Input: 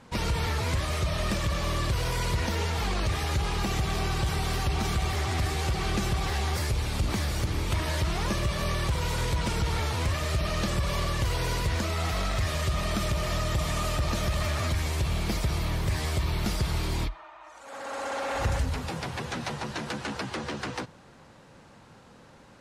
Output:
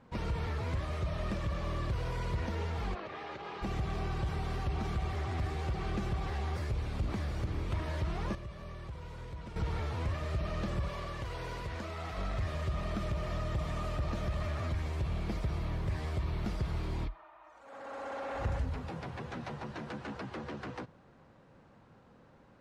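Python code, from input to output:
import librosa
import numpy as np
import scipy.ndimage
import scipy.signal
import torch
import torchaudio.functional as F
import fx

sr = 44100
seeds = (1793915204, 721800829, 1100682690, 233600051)

y = fx.bandpass_edges(x, sr, low_hz=340.0, high_hz=fx.line((2.94, 3100.0), (3.61, 4700.0)), at=(2.94, 3.61), fade=0.02)
y = fx.low_shelf(y, sr, hz=340.0, db=-7.0, at=(10.88, 12.18))
y = fx.edit(y, sr, fx.clip_gain(start_s=8.35, length_s=1.21, db=-9.5), tone=tone)
y = fx.lowpass(y, sr, hz=1400.0, slope=6)
y = fx.notch(y, sr, hz=880.0, q=28.0)
y = F.gain(torch.from_numpy(y), -6.0).numpy()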